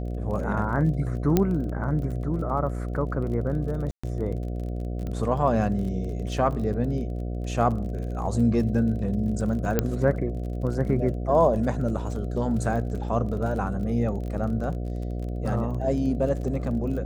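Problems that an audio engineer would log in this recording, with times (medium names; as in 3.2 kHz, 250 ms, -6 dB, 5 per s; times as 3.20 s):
buzz 60 Hz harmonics 12 -30 dBFS
crackle 30 per s -34 dBFS
1.37 s: pop -7 dBFS
3.91–4.04 s: dropout 125 ms
5.07 s: pop -23 dBFS
9.79 s: pop -8 dBFS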